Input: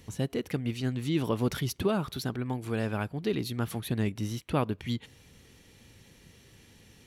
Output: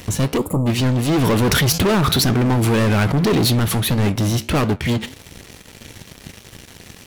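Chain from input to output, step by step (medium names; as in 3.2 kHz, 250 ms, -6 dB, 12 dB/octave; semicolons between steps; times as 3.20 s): waveshaping leveller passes 5; 0.38–0.67 s: time-frequency box 1.3–6.8 kHz -28 dB; flange 1.7 Hz, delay 8.7 ms, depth 7.8 ms, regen -79%; 1.22–3.59 s: level flattener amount 70%; trim +7 dB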